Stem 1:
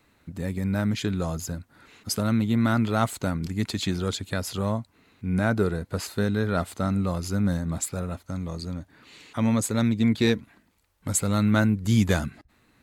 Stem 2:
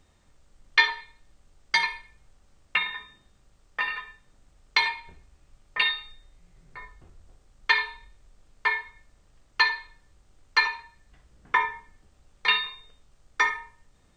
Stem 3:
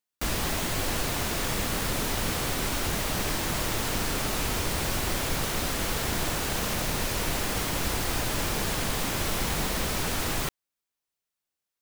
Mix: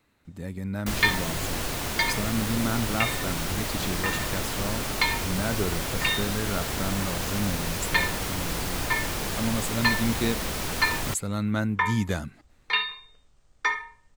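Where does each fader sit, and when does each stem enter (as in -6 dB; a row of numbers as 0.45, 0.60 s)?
-5.5, -2.5, -1.5 dB; 0.00, 0.25, 0.65 s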